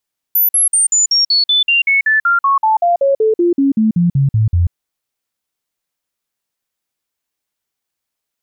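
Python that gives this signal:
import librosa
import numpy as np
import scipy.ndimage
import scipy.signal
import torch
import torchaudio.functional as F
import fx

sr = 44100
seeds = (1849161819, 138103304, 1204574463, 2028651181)

y = fx.stepped_sweep(sr, from_hz=14000.0, direction='down', per_octave=3, tones=23, dwell_s=0.14, gap_s=0.05, level_db=-9.0)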